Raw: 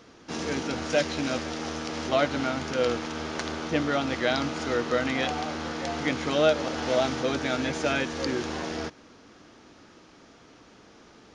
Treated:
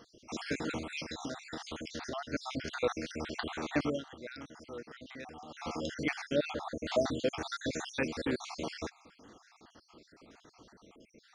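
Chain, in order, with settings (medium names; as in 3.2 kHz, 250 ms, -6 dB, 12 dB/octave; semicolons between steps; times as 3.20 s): random holes in the spectrogram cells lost 60%; 0.77–2.33 s: compression 6:1, threshold -34 dBFS, peak gain reduction 11 dB; 3.87–5.65 s: dip -14 dB, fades 0.16 s; 6.21–6.85 s: treble shelf 2.8 kHz -9 dB; trim -2.5 dB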